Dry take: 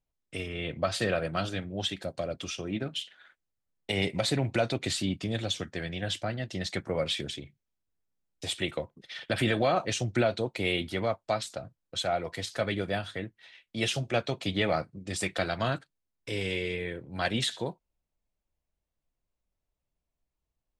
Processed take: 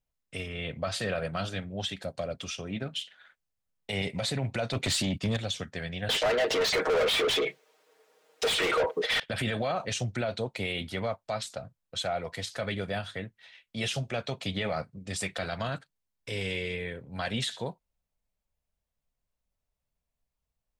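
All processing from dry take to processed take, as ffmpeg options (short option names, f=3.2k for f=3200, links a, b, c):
-filter_complex "[0:a]asettb=1/sr,asplit=3[a][b][c];[a]atrim=end=4.734[d];[b]atrim=start=4.73:end=5.37,asetpts=PTS-STARTPTS,afade=t=in:d=0.004:c=qsin,afade=t=out:st=0.636:d=0.004:c=qsin,agate=range=-12dB:threshold=-42dB:ratio=16:release=100:detection=peak,aeval=exprs='0.133*sin(PI/2*1.78*val(0)/0.133)':c=same[e];[c]atrim=start=5.366[f];[d][e]acrossfade=d=0.004:c1=hsin:c2=qsin[g];[g][f]acrossfade=d=0.004:c1=qsin:c2=hsin,asettb=1/sr,asplit=3[h][i][j];[h]atrim=end=6.094[k];[i]atrim=start=6.09:end=9.2,asetpts=PTS-STARTPTS,afade=t=in:d=0.004:c=qsin,afade=t=out:st=3.106:d=0.004:c=qsin,highpass=f=420:t=q:w=5.2,aecho=1:1:6.4:0.97,atrim=end_sample=137151,asplit=2[l][m];[m]highpass=f=720:p=1,volume=36dB,asoftclip=type=tanh:threshold=-7dB[n];[l][n]amix=inputs=2:normalize=0,lowpass=f=2.1k:p=1,volume=-6dB[o];[j]atrim=start=9.196[p];[k][o]acrossfade=d=0.004:c1=hsin:c2=qsin[q];[q][p]acrossfade=d=0.004:c1=qsin:c2=hsin,equalizer=f=330:w=5.1:g=-11.5,alimiter=limit=-21.5dB:level=0:latency=1:release=26"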